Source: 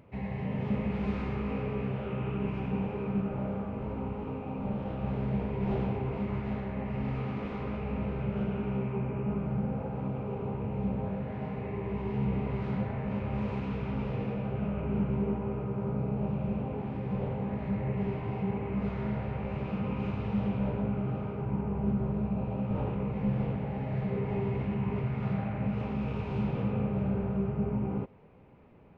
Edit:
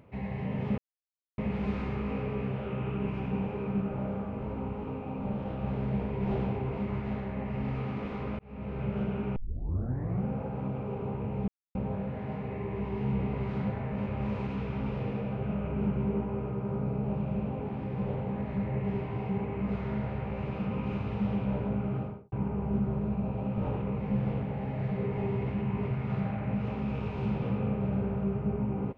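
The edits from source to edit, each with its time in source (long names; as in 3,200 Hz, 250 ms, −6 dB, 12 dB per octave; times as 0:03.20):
0:00.78: splice in silence 0.60 s
0:07.79–0:08.24: fade in
0:08.76: tape start 0.88 s
0:10.88: splice in silence 0.27 s
0:21.09–0:21.45: fade out and dull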